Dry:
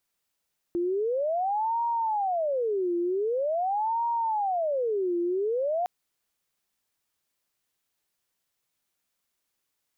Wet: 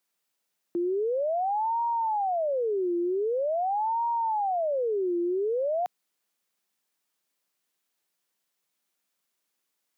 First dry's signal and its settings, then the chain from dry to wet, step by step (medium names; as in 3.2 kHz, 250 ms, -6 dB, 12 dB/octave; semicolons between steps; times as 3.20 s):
siren wail 345–938 Hz 0.45 per s sine -24 dBFS 5.11 s
high-pass 160 Hz 24 dB/octave